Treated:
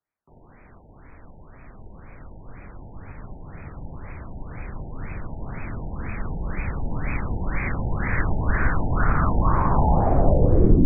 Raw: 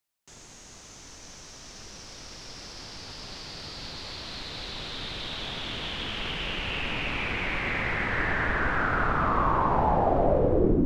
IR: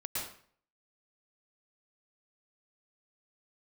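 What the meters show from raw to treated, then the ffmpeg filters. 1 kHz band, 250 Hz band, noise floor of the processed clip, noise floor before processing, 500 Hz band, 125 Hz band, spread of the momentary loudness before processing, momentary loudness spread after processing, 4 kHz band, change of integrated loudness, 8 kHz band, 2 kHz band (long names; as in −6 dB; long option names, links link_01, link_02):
−0.5 dB, +4.5 dB, −50 dBFS, −48 dBFS, 0.0 dB, +9.5 dB, 20 LU, 21 LU, below −40 dB, +3.0 dB, below −35 dB, −3.5 dB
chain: -af "asubboost=boost=2.5:cutoff=240,afftfilt=real='re*lt(b*sr/1024,930*pow(2600/930,0.5+0.5*sin(2*PI*2*pts/sr)))':imag='im*lt(b*sr/1024,930*pow(2600/930,0.5+0.5*sin(2*PI*2*pts/sr)))':win_size=1024:overlap=0.75,volume=1.5dB"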